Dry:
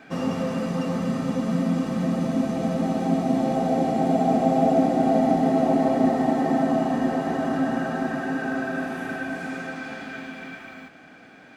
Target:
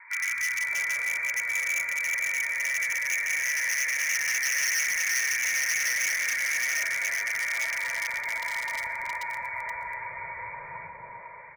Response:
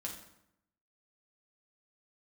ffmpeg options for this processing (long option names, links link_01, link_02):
-filter_complex "[0:a]highpass=59,bandreject=frequency=60:width_type=h:width=6,bandreject=frequency=120:width_type=h:width=6,bandreject=frequency=180:width_type=h:width=6,bandreject=frequency=240:width_type=h:width=6,bandreject=frequency=300:width_type=h:width=6,bandreject=frequency=360:width_type=h:width=6,bandreject=frequency=420:width_type=h:width=6,aecho=1:1:2:0.57,asplit=2[link_01][link_02];[link_02]acompressor=threshold=-35dB:ratio=16,volume=-1dB[link_03];[link_01][link_03]amix=inputs=2:normalize=0,asoftclip=type=tanh:threshold=-15dB,lowpass=frequency=2100:width_type=q:width=0.5098,lowpass=frequency=2100:width_type=q:width=0.6013,lowpass=frequency=2100:width_type=q:width=0.9,lowpass=frequency=2100:width_type=q:width=2.563,afreqshift=-2500,aeval=exprs='0.0944*(abs(mod(val(0)/0.0944+3,4)-2)-1)':channel_layout=same,acrossover=split=310|1100[link_04][link_05][link_06];[link_04]adelay=320[link_07];[link_05]adelay=610[link_08];[link_07][link_08][link_06]amix=inputs=3:normalize=0,asplit=2[link_09][link_10];[1:a]atrim=start_sample=2205,adelay=119[link_11];[link_10][link_11]afir=irnorm=-1:irlink=0,volume=-18.5dB[link_12];[link_09][link_12]amix=inputs=2:normalize=0,crystalizer=i=3:c=0,volume=-5dB"